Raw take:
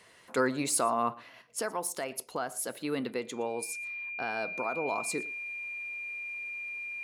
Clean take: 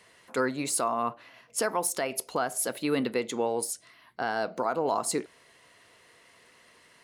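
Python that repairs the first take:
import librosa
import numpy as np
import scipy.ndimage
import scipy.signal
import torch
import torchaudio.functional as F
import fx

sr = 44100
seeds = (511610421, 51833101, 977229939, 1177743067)

y = fx.notch(x, sr, hz=2400.0, q=30.0)
y = fx.fix_echo_inverse(y, sr, delay_ms=116, level_db=-22.5)
y = fx.fix_level(y, sr, at_s=1.42, step_db=5.5)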